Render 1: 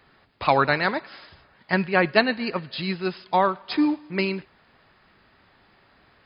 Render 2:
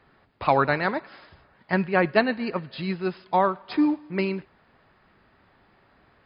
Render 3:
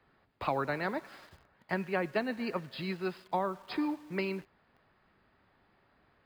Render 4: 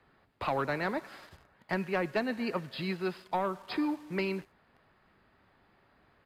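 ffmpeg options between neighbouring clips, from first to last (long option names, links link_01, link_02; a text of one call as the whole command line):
ffmpeg -i in.wav -af "highshelf=frequency=2900:gain=-11.5" out.wav
ffmpeg -i in.wav -filter_complex "[0:a]acrossover=split=210|540[link_01][link_02][link_03];[link_01]acompressor=threshold=-40dB:ratio=4[link_04];[link_02]acompressor=threshold=-30dB:ratio=4[link_05];[link_03]acompressor=threshold=-28dB:ratio=4[link_06];[link_04][link_05][link_06]amix=inputs=3:normalize=0,asplit=2[link_07][link_08];[link_08]acrusher=bits=7:mix=0:aa=0.000001,volume=-5dB[link_09];[link_07][link_09]amix=inputs=2:normalize=0,volume=-8.5dB" out.wav
ffmpeg -i in.wav -filter_complex "[0:a]acrossover=split=4700[link_01][link_02];[link_01]asoftclip=type=tanh:threshold=-23.5dB[link_03];[link_02]aecho=1:1:75:0.211[link_04];[link_03][link_04]amix=inputs=2:normalize=0,aresample=32000,aresample=44100,volume=2.5dB" out.wav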